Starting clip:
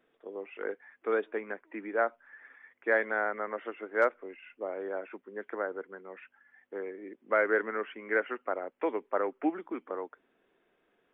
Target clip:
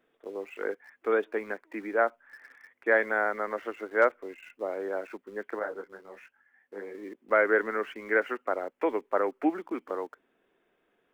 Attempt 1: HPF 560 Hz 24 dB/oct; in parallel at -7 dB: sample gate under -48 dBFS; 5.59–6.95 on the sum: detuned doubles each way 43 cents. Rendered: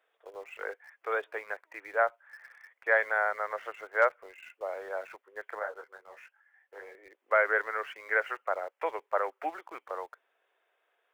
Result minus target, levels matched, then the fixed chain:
500 Hz band -2.5 dB
in parallel at -7 dB: sample gate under -48 dBFS; 5.59–6.95 on the sum: detuned doubles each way 43 cents

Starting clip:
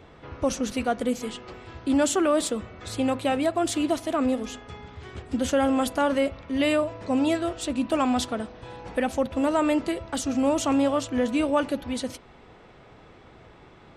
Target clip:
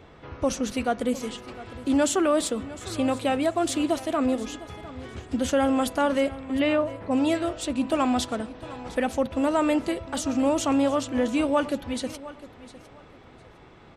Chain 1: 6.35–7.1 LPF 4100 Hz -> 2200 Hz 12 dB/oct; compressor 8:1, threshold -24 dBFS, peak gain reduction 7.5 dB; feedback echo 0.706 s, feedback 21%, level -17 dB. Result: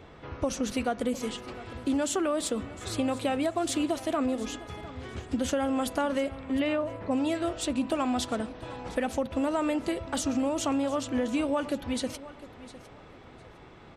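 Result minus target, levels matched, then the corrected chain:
compressor: peak gain reduction +7.5 dB
6.35–7.1 LPF 4100 Hz -> 2200 Hz 12 dB/oct; feedback echo 0.706 s, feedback 21%, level -17 dB

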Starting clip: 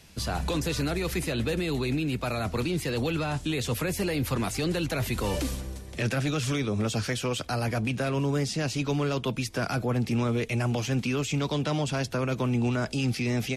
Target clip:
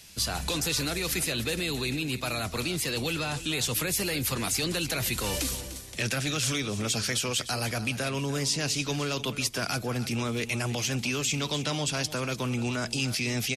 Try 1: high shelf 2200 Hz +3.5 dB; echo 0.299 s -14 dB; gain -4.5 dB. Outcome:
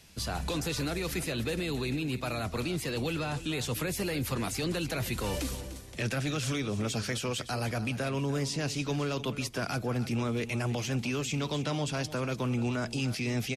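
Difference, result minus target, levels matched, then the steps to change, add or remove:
4000 Hz band -4.0 dB
change: high shelf 2200 Hz +13.5 dB

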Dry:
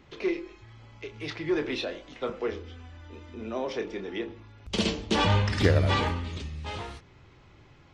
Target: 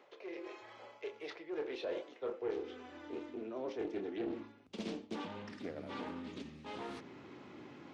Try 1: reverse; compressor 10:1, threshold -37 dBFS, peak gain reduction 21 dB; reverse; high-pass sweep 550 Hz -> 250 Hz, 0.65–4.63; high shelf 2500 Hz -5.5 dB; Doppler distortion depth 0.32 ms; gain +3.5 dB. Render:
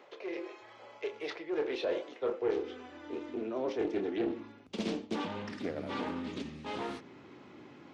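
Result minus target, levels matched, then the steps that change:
compressor: peak gain reduction -6.5 dB
change: compressor 10:1, threshold -44.5 dBFS, peak gain reduction 28 dB

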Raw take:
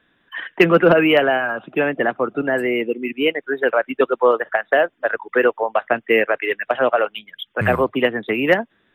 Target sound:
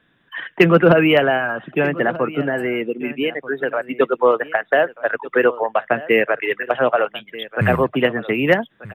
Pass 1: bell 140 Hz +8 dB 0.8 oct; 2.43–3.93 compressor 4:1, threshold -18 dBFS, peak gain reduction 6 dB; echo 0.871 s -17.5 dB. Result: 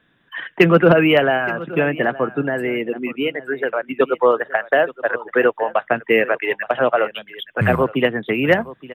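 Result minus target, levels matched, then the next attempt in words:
echo 0.366 s early
bell 140 Hz +8 dB 0.8 oct; 2.43–3.93 compressor 4:1, threshold -18 dBFS, peak gain reduction 6 dB; echo 1.237 s -17.5 dB

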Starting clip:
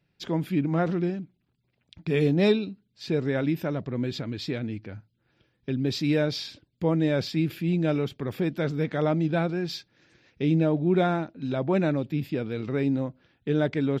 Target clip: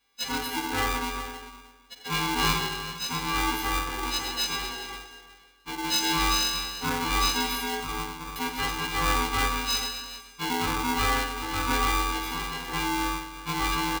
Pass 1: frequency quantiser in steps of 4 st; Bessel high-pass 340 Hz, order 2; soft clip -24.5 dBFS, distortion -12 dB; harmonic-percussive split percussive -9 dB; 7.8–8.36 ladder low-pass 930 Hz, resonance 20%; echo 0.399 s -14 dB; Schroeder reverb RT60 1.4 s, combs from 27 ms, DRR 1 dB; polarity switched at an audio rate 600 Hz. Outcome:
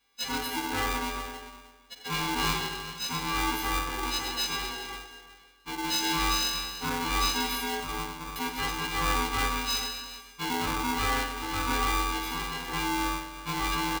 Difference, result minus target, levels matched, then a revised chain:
soft clip: distortion +8 dB
frequency quantiser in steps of 4 st; Bessel high-pass 340 Hz, order 2; soft clip -17.5 dBFS, distortion -20 dB; harmonic-percussive split percussive -9 dB; 7.8–8.36 ladder low-pass 930 Hz, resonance 20%; echo 0.399 s -14 dB; Schroeder reverb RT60 1.4 s, combs from 27 ms, DRR 1 dB; polarity switched at an audio rate 600 Hz

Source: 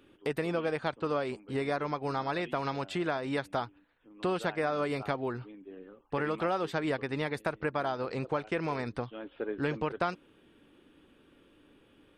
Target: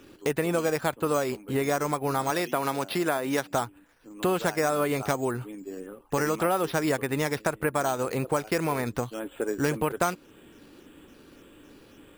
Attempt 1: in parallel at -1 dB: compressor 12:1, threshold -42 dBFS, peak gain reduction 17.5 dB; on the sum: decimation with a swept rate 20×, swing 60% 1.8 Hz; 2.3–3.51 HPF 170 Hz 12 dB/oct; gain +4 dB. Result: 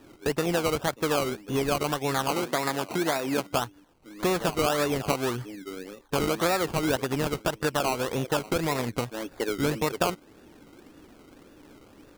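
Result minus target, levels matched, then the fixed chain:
decimation with a swept rate: distortion +13 dB
in parallel at -1 dB: compressor 12:1, threshold -42 dBFS, peak gain reduction 17.5 dB; on the sum: decimation with a swept rate 5×, swing 60% 1.8 Hz; 2.3–3.51 HPF 170 Hz 12 dB/oct; gain +4 dB

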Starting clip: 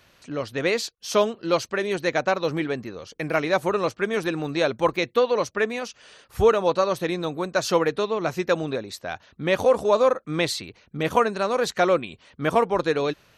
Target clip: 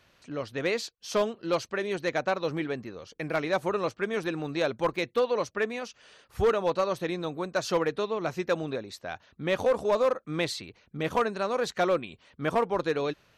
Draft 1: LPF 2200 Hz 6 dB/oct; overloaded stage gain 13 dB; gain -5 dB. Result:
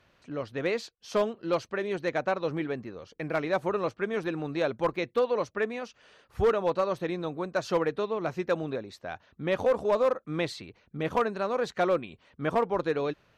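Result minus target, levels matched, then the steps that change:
8000 Hz band -7.0 dB
change: LPF 7400 Hz 6 dB/oct

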